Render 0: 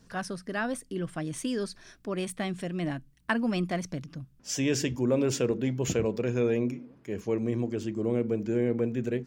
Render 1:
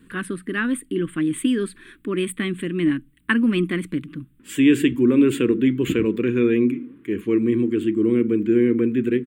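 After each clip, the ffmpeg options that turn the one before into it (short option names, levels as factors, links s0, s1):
-af "firequalizer=gain_entry='entry(130,0);entry(310,14);entry(670,-18);entry(1100,3);entry(1900,8);entry(3400,6);entry(5600,-24);entry(8100,5)':delay=0.05:min_phase=1,volume=1.26"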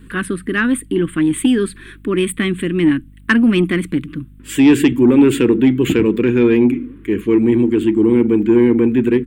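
-af "acontrast=85,aeval=exprs='val(0)+0.00891*(sin(2*PI*50*n/s)+sin(2*PI*2*50*n/s)/2+sin(2*PI*3*50*n/s)/3+sin(2*PI*4*50*n/s)/4+sin(2*PI*5*50*n/s)/5)':c=same"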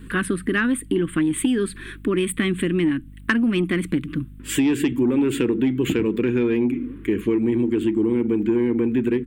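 -af "acompressor=threshold=0.112:ratio=5,volume=1.12"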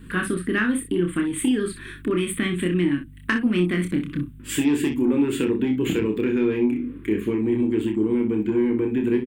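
-af "aecho=1:1:28|62:0.596|0.335,volume=0.708"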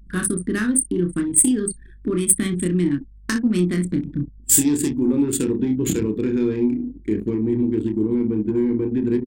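-af "anlmdn=63.1,aexciter=amount=5.8:drive=9.9:freq=4300,lowshelf=f=320:g=10,volume=0.596"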